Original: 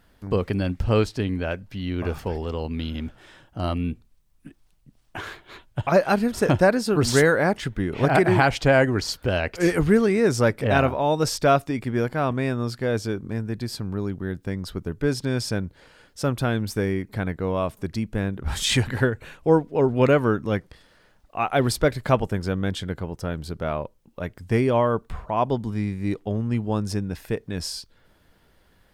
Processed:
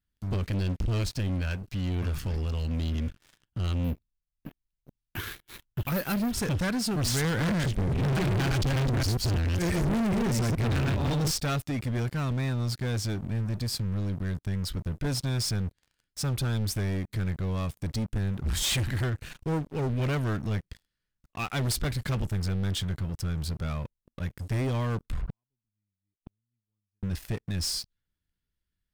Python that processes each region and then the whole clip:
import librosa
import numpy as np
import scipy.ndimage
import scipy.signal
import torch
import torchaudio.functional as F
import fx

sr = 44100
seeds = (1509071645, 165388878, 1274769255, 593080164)

y = fx.chain(x, sr, fx.peak_eq(hz=330.0, db=2.5, octaves=1.6),
    fx.resample_bad(factor=3, down='filtered', up='hold'), at=(3.84, 6.33))
y = fx.chain(y, sr, fx.reverse_delay(ms=138, wet_db=-3),
    fx.low_shelf(hz=360.0, db=9.5),
    fx.clip_hard(threshold_db=-11.5), at=(7.24, 11.31))
y = fx.chain(y, sr, fx.lowpass(hz=3300.0, slope=12),
    fx.low_shelf(hz=84.0, db=10.5),
    fx.gate_flip(shuts_db=-22.0, range_db=-38), at=(25.21, 27.03))
y = fx.tone_stack(y, sr, knobs='6-0-2')
y = fx.leveller(y, sr, passes=5)